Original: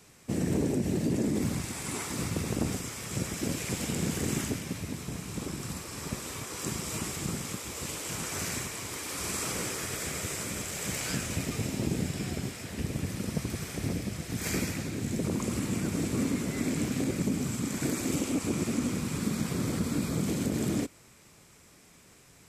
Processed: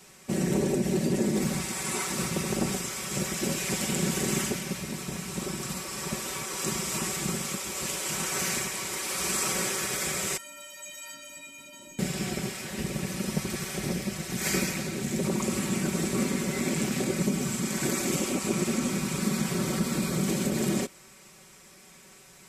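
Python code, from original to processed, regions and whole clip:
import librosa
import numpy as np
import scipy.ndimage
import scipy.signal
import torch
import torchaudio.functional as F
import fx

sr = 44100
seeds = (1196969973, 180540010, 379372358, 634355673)

y = fx.chain(x, sr, fx.peak_eq(hz=3000.0, db=6.5, octaves=0.35),
    fx.stiff_resonator(f0_hz=280.0, decay_s=0.63, stiffness=0.03),
    fx.env_flatten(amount_pct=50), at=(10.37, 11.99))
y = fx.low_shelf(y, sr, hz=260.0, db=-6.5)
y = y + 0.74 * np.pad(y, (int(5.3 * sr / 1000.0), 0))[:len(y)]
y = y * 10.0 ** (3.5 / 20.0)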